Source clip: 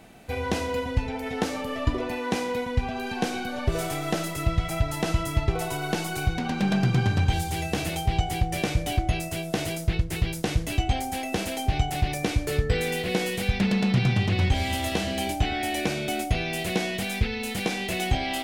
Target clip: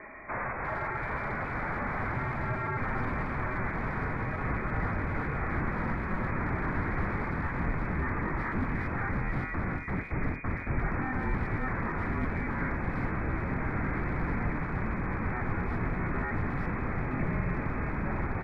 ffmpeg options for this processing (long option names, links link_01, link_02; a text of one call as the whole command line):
ffmpeg -i in.wav -filter_complex "[0:a]highpass=56,alimiter=limit=-17.5dB:level=0:latency=1:release=30,aresample=16000,aeval=exprs='0.141*sin(PI/2*6.31*val(0)/0.141)':channel_layout=same,aresample=44100,aderivative,acrossover=split=230[link_01][link_02];[link_02]asoftclip=type=tanh:threshold=-24.5dB[link_03];[link_01][link_03]amix=inputs=2:normalize=0,lowpass=frequency=2200:width_type=q:width=0.5098,lowpass=frequency=2200:width_type=q:width=0.6013,lowpass=frequency=2200:width_type=q:width=0.9,lowpass=frequency=2200:width_type=q:width=2.563,afreqshift=-2600,asplit=2[link_04][link_05];[link_05]adelay=350,highpass=300,lowpass=3400,asoftclip=type=hard:threshold=-37dB,volume=-12dB[link_06];[link_04][link_06]amix=inputs=2:normalize=0,asubboost=boost=9.5:cutoff=190,volume=5.5dB" out.wav